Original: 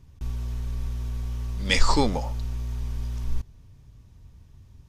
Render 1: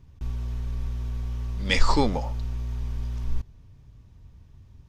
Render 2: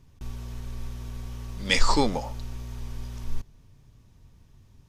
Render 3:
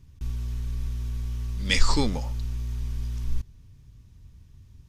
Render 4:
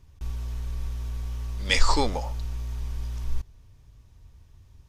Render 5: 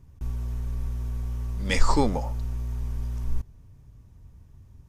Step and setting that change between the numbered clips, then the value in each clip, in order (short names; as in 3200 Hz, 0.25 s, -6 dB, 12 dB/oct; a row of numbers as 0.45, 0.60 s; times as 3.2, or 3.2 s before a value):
bell, frequency: 11000, 65, 700, 180, 3800 Hz